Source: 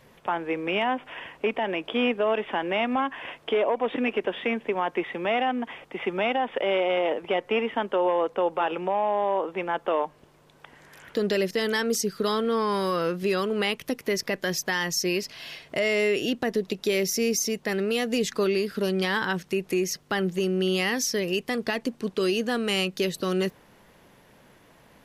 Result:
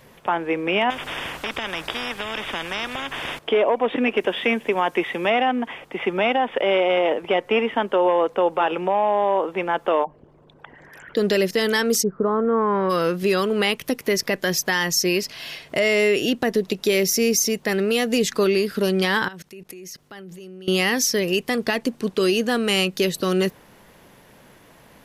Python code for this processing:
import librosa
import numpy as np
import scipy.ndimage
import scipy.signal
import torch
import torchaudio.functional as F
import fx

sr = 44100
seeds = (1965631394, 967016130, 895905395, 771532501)

y = fx.spectral_comp(x, sr, ratio=4.0, at=(0.9, 3.39))
y = fx.high_shelf(y, sr, hz=4500.0, db=11.5, at=(4.17, 5.3))
y = fx.envelope_sharpen(y, sr, power=2.0, at=(10.03, 11.16), fade=0.02)
y = fx.lowpass(y, sr, hz=fx.line((12.02, 1000.0), (12.89, 2200.0)), slope=24, at=(12.02, 12.89), fade=0.02)
y = fx.level_steps(y, sr, step_db=22, at=(19.28, 20.68))
y = fx.high_shelf(y, sr, hz=9500.0, db=5.0)
y = y * 10.0 ** (5.0 / 20.0)